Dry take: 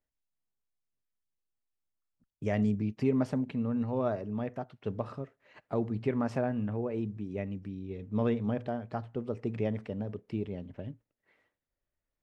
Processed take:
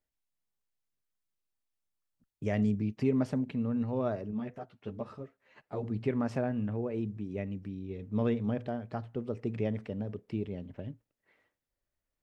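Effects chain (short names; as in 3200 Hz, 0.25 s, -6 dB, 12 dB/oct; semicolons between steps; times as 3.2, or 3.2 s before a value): dynamic EQ 930 Hz, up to -3 dB, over -46 dBFS, Q 0.98; 4.31–5.84 ensemble effect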